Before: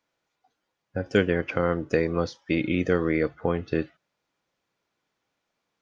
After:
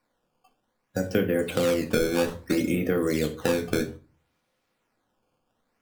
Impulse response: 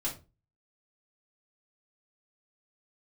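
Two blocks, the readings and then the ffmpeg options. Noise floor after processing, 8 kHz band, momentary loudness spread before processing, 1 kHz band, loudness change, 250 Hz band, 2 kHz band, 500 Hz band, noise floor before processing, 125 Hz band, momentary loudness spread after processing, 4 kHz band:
−76 dBFS, can't be measured, 7 LU, −2.5 dB, 0.0 dB, +0.5 dB, −2.0 dB, +0.5 dB, −81 dBFS, −2.0 dB, 5 LU, +4.5 dB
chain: -filter_complex "[0:a]acrossover=split=84|510|1200[link_01][link_02][link_03][link_04];[link_01]acompressor=threshold=-54dB:ratio=4[link_05];[link_02]acompressor=threshold=-25dB:ratio=4[link_06];[link_03]acompressor=threshold=-39dB:ratio=4[link_07];[link_04]acompressor=threshold=-40dB:ratio=4[link_08];[link_05][link_06][link_07][link_08]amix=inputs=4:normalize=0,acrusher=samples=13:mix=1:aa=0.000001:lfo=1:lforange=20.8:lforate=0.61,asplit=2[link_09][link_10];[1:a]atrim=start_sample=2205,asetrate=35721,aresample=44100[link_11];[link_10][link_11]afir=irnorm=-1:irlink=0,volume=-5.5dB[link_12];[link_09][link_12]amix=inputs=2:normalize=0"

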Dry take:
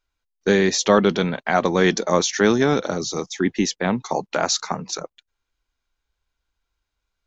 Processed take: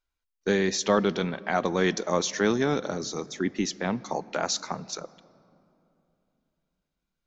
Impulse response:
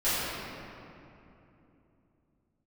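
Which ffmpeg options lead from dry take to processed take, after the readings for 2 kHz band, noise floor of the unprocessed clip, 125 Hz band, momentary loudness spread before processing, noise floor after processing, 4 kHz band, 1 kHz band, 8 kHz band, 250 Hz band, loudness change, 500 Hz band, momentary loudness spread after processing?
−7.0 dB, −81 dBFS, −7.0 dB, 10 LU, −83 dBFS, −7.0 dB, −7.0 dB, can't be measured, −7.0 dB, −7.0 dB, −7.0 dB, 11 LU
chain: -filter_complex "[0:a]asplit=2[link_01][link_02];[1:a]atrim=start_sample=2205[link_03];[link_02][link_03]afir=irnorm=-1:irlink=0,volume=-32dB[link_04];[link_01][link_04]amix=inputs=2:normalize=0,volume=-7dB"

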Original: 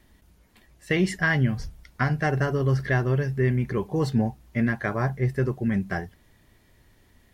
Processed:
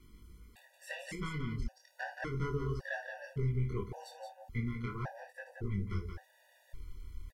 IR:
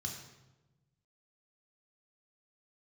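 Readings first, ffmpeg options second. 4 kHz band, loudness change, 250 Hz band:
−12.5 dB, −14.0 dB, −16.0 dB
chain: -af "asubboost=boost=9.5:cutoff=59,acompressor=threshold=-37dB:ratio=3,aeval=exprs='0.0841*(cos(1*acos(clip(val(0)/0.0841,-1,1)))-cos(1*PI/2))+0.0075*(cos(4*acos(clip(val(0)/0.0841,-1,1)))-cos(4*PI/2))':channel_layout=same,flanger=delay=20:depth=6:speed=0.35,aecho=1:1:54|175:0.224|0.473,afftfilt=real='re*gt(sin(2*PI*0.89*pts/sr)*(1-2*mod(floor(b*sr/1024/490),2)),0)':imag='im*gt(sin(2*PI*0.89*pts/sr)*(1-2*mod(floor(b*sr/1024/490),2)),0)':win_size=1024:overlap=0.75,volume=3dB"

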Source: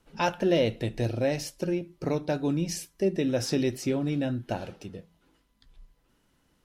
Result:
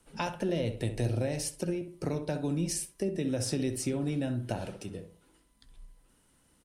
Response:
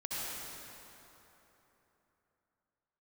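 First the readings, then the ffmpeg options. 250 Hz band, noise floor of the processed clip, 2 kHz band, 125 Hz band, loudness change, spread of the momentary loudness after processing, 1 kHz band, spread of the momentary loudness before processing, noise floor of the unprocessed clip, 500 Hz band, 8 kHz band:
−4.0 dB, −67 dBFS, −6.0 dB, −1.0 dB, −4.5 dB, 6 LU, −6.5 dB, 11 LU, −69 dBFS, −6.0 dB, +2.5 dB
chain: -filter_complex "[0:a]equalizer=frequency=9100:width_type=o:width=0.46:gain=15,acrossover=split=170[link_01][link_02];[link_02]acompressor=threshold=-31dB:ratio=5[link_03];[link_01][link_03]amix=inputs=2:normalize=0,asplit=2[link_04][link_05];[link_05]adelay=65,lowpass=frequency=1400:poles=1,volume=-8dB,asplit=2[link_06][link_07];[link_07]adelay=65,lowpass=frequency=1400:poles=1,volume=0.35,asplit=2[link_08][link_09];[link_09]adelay=65,lowpass=frequency=1400:poles=1,volume=0.35,asplit=2[link_10][link_11];[link_11]adelay=65,lowpass=frequency=1400:poles=1,volume=0.35[link_12];[link_06][link_08][link_10][link_12]amix=inputs=4:normalize=0[link_13];[link_04][link_13]amix=inputs=2:normalize=0"

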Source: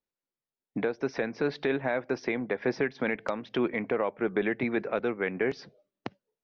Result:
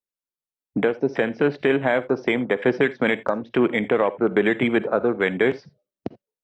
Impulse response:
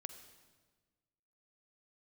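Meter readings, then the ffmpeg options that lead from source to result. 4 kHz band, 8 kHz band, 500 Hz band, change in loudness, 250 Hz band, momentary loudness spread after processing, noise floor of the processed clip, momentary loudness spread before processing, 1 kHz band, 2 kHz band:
+9.5 dB, can't be measured, +8.5 dB, +8.5 dB, +8.5 dB, 8 LU, below −85 dBFS, 8 LU, +8.0 dB, +8.5 dB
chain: -filter_complex "[0:a]afwtdn=0.0141,asplit=2[link_01][link_02];[link_02]highshelf=frequency=4900:gain=10[link_03];[1:a]atrim=start_sample=2205,atrim=end_sample=3969[link_04];[link_03][link_04]afir=irnorm=-1:irlink=0,volume=9dB[link_05];[link_01][link_05]amix=inputs=2:normalize=0"

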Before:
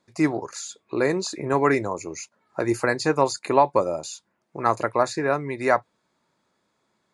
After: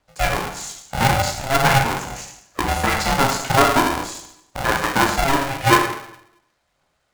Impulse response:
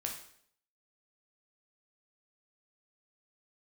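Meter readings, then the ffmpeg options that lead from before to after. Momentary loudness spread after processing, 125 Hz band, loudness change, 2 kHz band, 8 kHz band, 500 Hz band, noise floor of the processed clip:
15 LU, +9.5 dB, +4.5 dB, +8.5 dB, +8.0 dB, −1.0 dB, −69 dBFS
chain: -filter_complex "[0:a]afreqshift=65,aphaser=in_gain=1:out_gain=1:delay=4.5:decay=0.49:speed=0.44:type=triangular,bandreject=frequency=108.2:width_type=h:width=4,bandreject=frequency=216.4:width_type=h:width=4,bandreject=frequency=324.6:width_type=h:width=4,bandreject=frequency=432.8:width_type=h:width=4,bandreject=frequency=541:width_type=h:width=4,bandreject=frequency=649.2:width_type=h:width=4,bandreject=frequency=757.4:width_type=h:width=4,bandreject=frequency=865.6:width_type=h:width=4,bandreject=frequency=973.8:width_type=h:width=4,bandreject=frequency=1082:width_type=h:width=4,bandreject=frequency=1190.2:width_type=h:width=4,bandreject=frequency=1298.4:width_type=h:width=4,bandreject=frequency=1406.6:width_type=h:width=4,bandreject=frequency=1514.8:width_type=h:width=4,bandreject=frequency=1623:width_type=h:width=4,bandreject=frequency=1731.2:width_type=h:width=4,bandreject=frequency=1839.4:width_type=h:width=4,bandreject=frequency=1947.6:width_type=h:width=4,bandreject=frequency=2055.8:width_type=h:width=4,bandreject=frequency=2164:width_type=h:width=4,bandreject=frequency=2272.2:width_type=h:width=4,bandreject=frequency=2380.4:width_type=h:width=4,bandreject=frequency=2488.6:width_type=h:width=4,bandreject=frequency=2596.8:width_type=h:width=4,bandreject=frequency=2705:width_type=h:width=4,bandreject=frequency=2813.2:width_type=h:width=4,bandreject=frequency=2921.4:width_type=h:width=4,asplit=2[link_01][link_02];[link_02]acrusher=bits=3:mix=0:aa=0.000001,volume=-11dB[link_03];[link_01][link_03]amix=inputs=2:normalize=0[link_04];[1:a]atrim=start_sample=2205,asetrate=35721,aresample=44100[link_05];[link_04][link_05]afir=irnorm=-1:irlink=0,aeval=exprs='val(0)*sgn(sin(2*PI*340*n/s))':channel_layout=same"

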